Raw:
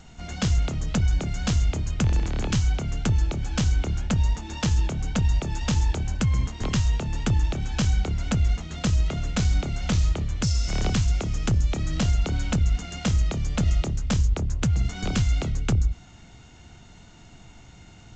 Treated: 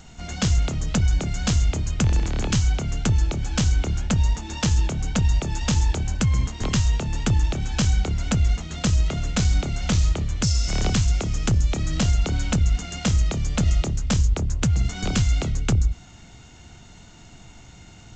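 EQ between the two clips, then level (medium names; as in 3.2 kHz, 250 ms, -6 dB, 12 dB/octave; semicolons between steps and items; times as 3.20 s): treble shelf 6.8 kHz +7 dB; +2.0 dB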